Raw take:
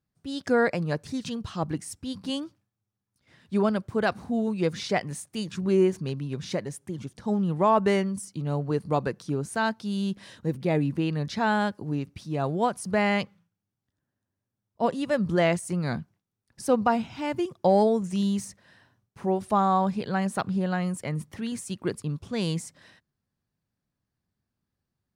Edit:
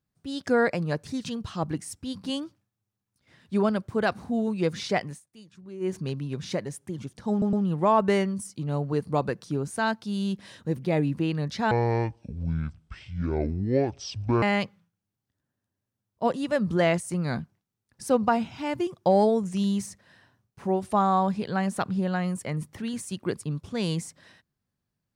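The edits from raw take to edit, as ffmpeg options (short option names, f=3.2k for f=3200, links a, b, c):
-filter_complex "[0:a]asplit=7[a][b][c][d][e][f][g];[a]atrim=end=5.2,asetpts=PTS-STARTPTS,afade=t=out:st=5:d=0.2:c=qsin:silence=0.125893[h];[b]atrim=start=5.2:end=5.8,asetpts=PTS-STARTPTS,volume=-18dB[i];[c]atrim=start=5.8:end=7.422,asetpts=PTS-STARTPTS,afade=t=in:d=0.2:c=qsin:silence=0.125893[j];[d]atrim=start=7.308:end=7.422[k];[e]atrim=start=7.308:end=11.494[l];[f]atrim=start=11.49:end=13.01,asetpts=PTS-STARTPTS,asetrate=24696,aresample=44100[m];[g]atrim=start=13.006[n];[h][i][j]concat=n=3:v=0:a=1[o];[o][k]acrossfade=d=0.004:c1=hsin:c2=hsin[p];[p][l]acrossfade=d=0.004:c1=hsin:c2=hsin[q];[q][m]acrossfade=d=0.004:c1=hsin:c2=hsin[r];[r][n]acrossfade=d=0.004:c1=hsin:c2=hsin"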